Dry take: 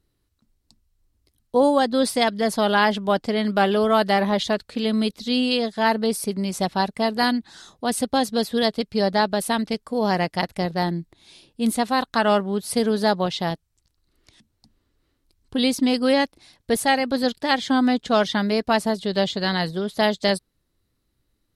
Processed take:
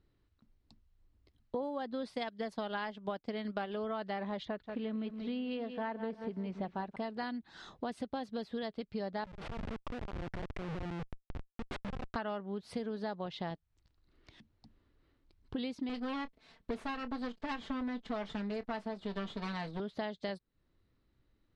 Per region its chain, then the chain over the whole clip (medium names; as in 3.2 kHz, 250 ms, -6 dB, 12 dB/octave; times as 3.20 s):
2.14–3.76 s: treble shelf 5.5 kHz +9.5 dB + transient shaper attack +4 dB, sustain -8 dB
4.45–6.96 s: low-pass 2.5 kHz + bit-crushed delay 183 ms, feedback 35%, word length 8-bit, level -11.5 dB
9.24–12.16 s: low-pass 4.3 kHz + compressor with a negative ratio -34 dBFS + Schmitt trigger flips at -31.5 dBFS
15.89–19.80 s: comb filter that takes the minimum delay 4.5 ms + doubling 25 ms -14 dB
whole clip: low-pass 3.1 kHz 12 dB/octave; compression 6:1, threshold -35 dBFS; trim -1.5 dB